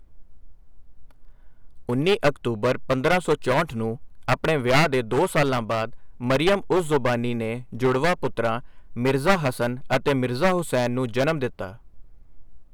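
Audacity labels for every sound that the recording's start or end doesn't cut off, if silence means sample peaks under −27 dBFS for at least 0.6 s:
1.890000	11.670000	sound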